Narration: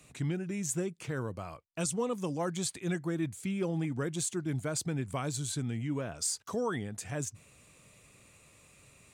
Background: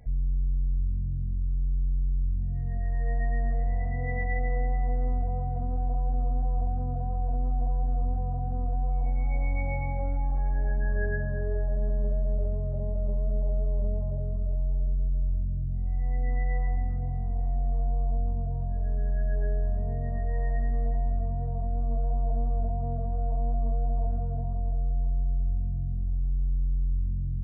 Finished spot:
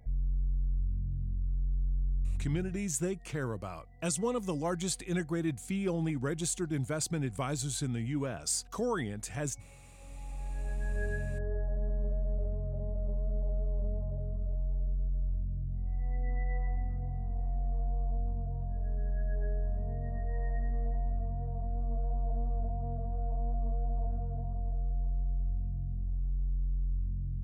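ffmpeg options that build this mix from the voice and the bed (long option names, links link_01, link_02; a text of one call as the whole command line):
ffmpeg -i stem1.wav -i stem2.wav -filter_complex "[0:a]adelay=2250,volume=0.5dB[link_01];[1:a]volume=17dB,afade=type=out:start_time=2.33:duration=0.56:silence=0.0749894,afade=type=in:start_time=9.97:duration=1.08:silence=0.0841395[link_02];[link_01][link_02]amix=inputs=2:normalize=0" out.wav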